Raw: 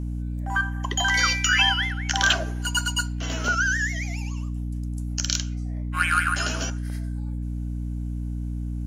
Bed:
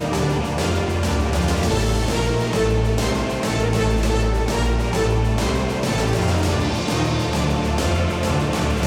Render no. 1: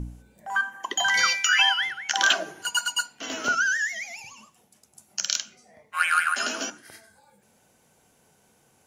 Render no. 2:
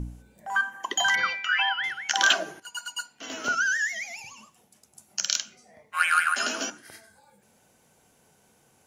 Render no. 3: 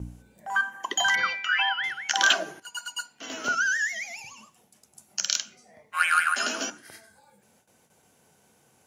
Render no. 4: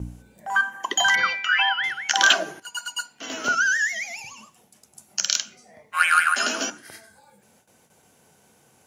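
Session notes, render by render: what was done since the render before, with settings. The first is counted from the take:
hum removal 60 Hz, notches 5
0:01.15–0:01.84: high-frequency loss of the air 380 metres; 0:02.60–0:03.88: fade in, from −15 dB
high-pass filter 67 Hz 12 dB per octave; noise gate with hold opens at −52 dBFS
level +4 dB; brickwall limiter −2 dBFS, peak gain reduction 1 dB

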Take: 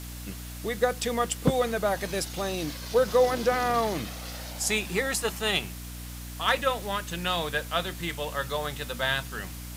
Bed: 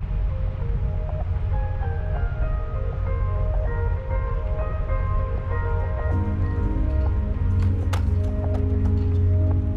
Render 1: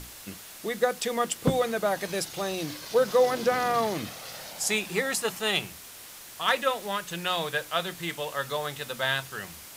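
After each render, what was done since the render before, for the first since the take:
mains-hum notches 60/120/180/240/300 Hz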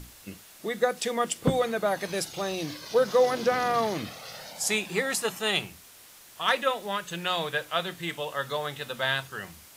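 noise reduction from a noise print 6 dB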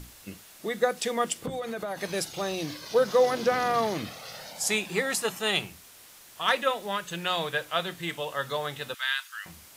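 0:01.35–0:02.01: downward compressor 10 to 1, threshold −29 dBFS
0:08.94–0:09.46: high-pass filter 1,300 Hz 24 dB per octave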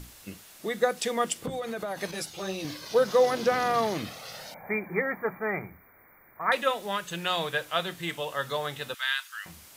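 0:02.11–0:02.65: string-ensemble chorus
0:04.54–0:06.52: linear-phase brick-wall band-stop 2,400–14,000 Hz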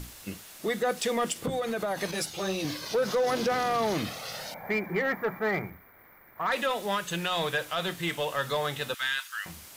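brickwall limiter −20 dBFS, peak gain reduction 7.5 dB
leveller curve on the samples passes 1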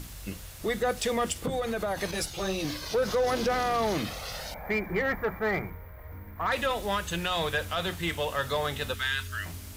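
mix in bed −21 dB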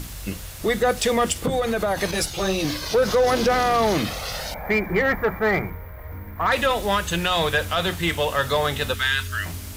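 level +7.5 dB

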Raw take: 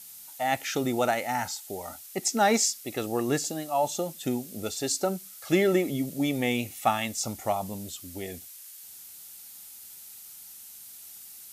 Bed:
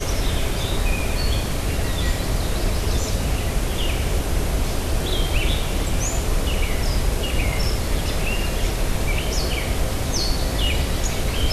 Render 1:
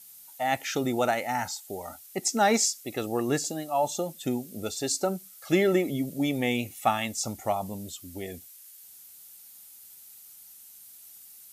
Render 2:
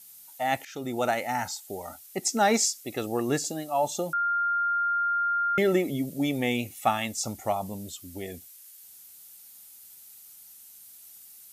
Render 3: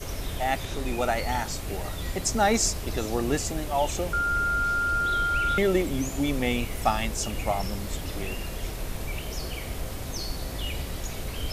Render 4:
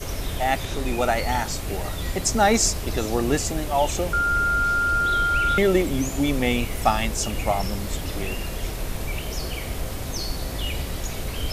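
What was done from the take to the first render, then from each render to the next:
broadband denoise 6 dB, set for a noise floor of −47 dBFS
0:00.65–0:01.12: fade in, from −17 dB; 0:04.13–0:05.58: beep over 1,400 Hz −23 dBFS
mix in bed −11 dB
level +4 dB

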